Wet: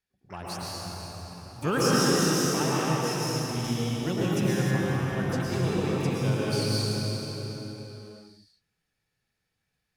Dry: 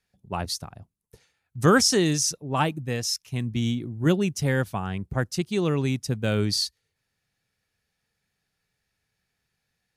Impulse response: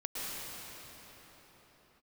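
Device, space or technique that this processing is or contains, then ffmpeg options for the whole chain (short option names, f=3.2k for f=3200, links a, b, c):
shimmer-style reverb: -filter_complex "[0:a]asplit=2[a][b];[b]asetrate=88200,aresample=44100,atempo=0.5,volume=-12dB[c];[a][c]amix=inputs=2:normalize=0[d];[1:a]atrim=start_sample=2205[e];[d][e]afir=irnorm=-1:irlink=0,asettb=1/sr,asplit=3[f][g][h];[f]atrim=end=3.644[i];[g]atrim=start=3.64:end=4.71,asetpts=PTS-STARTPTS,afade=t=in:d=0.004:c=qsin,afade=t=out:st=1.066:d=0.004:c=qsin,highshelf=f=5.7k:g=4.5[j];[h]atrim=start=4.706[k];[i][j]acrossfade=d=0.004:c1=hsin:c2=qsin[l];[l][k]acrossfade=d=0.004:c1=qsin:c2=hsin,volume=-6.5dB"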